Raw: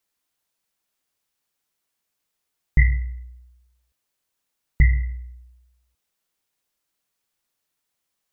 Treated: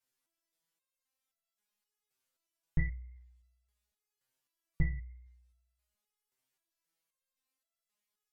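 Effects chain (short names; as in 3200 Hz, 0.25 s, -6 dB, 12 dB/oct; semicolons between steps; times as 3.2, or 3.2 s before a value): treble ducked by the level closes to 1200 Hz, closed at -17 dBFS; stepped resonator 3.8 Hz 130–670 Hz; gain +4.5 dB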